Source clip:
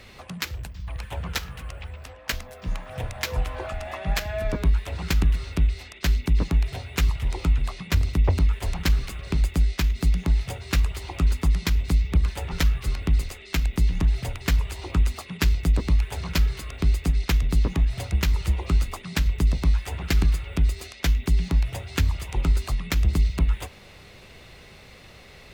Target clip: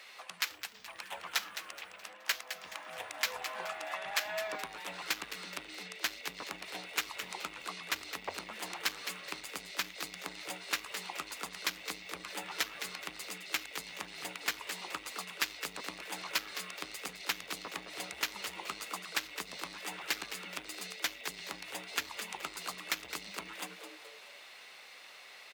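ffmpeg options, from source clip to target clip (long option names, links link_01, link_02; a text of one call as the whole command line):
ffmpeg -i in.wav -filter_complex "[0:a]asplit=5[link_01][link_02][link_03][link_04][link_05];[link_02]adelay=212,afreqshift=130,volume=-11dB[link_06];[link_03]adelay=424,afreqshift=260,volume=-19.2dB[link_07];[link_04]adelay=636,afreqshift=390,volume=-27.4dB[link_08];[link_05]adelay=848,afreqshift=520,volume=-35.5dB[link_09];[link_01][link_06][link_07][link_08][link_09]amix=inputs=5:normalize=0,asplit=2[link_10][link_11];[link_11]aeval=exprs='0.106*(abs(mod(val(0)/0.106+3,4)-2)-1)':channel_layout=same,volume=-10dB[link_12];[link_10][link_12]amix=inputs=2:normalize=0,highpass=850,volume=-4.5dB" out.wav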